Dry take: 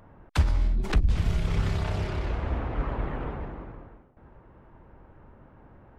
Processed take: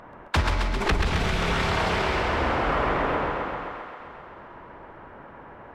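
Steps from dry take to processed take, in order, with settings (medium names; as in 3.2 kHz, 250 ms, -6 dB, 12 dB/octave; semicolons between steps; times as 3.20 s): hum notches 50/100 Hz; overdrive pedal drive 16 dB, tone 2.7 kHz, clips at -11.5 dBFS; in parallel at -6 dB: hard clipper -24 dBFS, distortion -13 dB; on the sum: thinning echo 138 ms, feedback 76%, high-pass 300 Hz, level -5 dB; speed mistake 24 fps film run at 25 fps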